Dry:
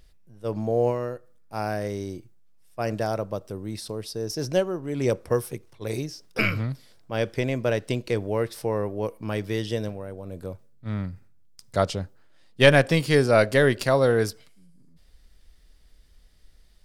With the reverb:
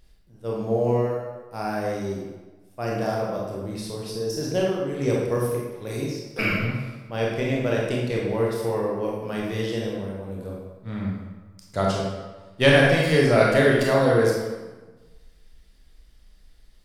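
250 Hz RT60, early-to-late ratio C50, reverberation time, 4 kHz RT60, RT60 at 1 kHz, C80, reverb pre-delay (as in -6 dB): 1.2 s, 0.0 dB, 1.3 s, 0.90 s, 1.3 s, 3.0 dB, 21 ms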